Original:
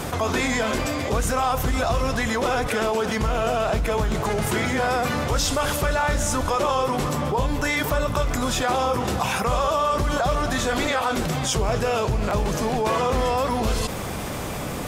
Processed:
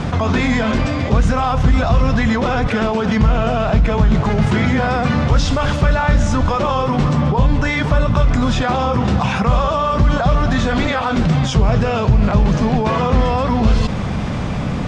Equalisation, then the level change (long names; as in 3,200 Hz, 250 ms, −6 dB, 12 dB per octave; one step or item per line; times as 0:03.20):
Bessel low-pass filter 4,100 Hz, order 4
low shelf with overshoot 270 Hz +6.5 dB, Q 1.5
+4.5 dB